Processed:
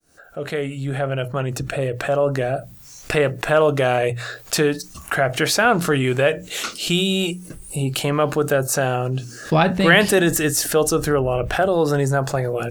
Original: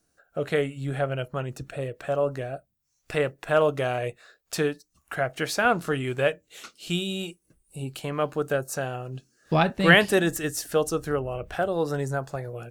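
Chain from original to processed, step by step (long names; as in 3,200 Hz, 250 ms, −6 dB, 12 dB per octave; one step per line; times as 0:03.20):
fade in at the beginning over 2.72 s
mains-hum notches 60/120/180 Hz
envelope flattener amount 50%
level +2 dB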